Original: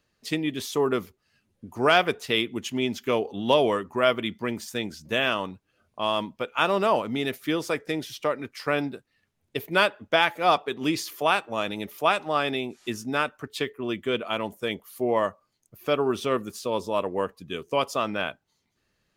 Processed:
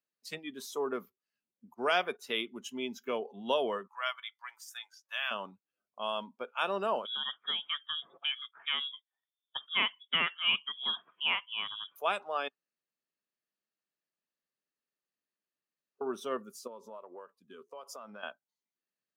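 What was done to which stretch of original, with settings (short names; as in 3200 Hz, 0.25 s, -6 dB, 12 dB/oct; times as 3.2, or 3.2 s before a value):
1.74–2.19 gate -37 dBFS, range -20 dB
3.87–5.31 HPF 910 Hz 24 dB/oct
7.05–11.96 inverted band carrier 3600 Hz
12.48–16.01 room tone
16.67–18.23 compressor 16:1, threshold -31 dBFS
whole clip: HPF 160 Hz 24 dB/oct; spectral noise reduction 14 dB; low shelf 210 Hz -6.5 dB; gain -8.5 dB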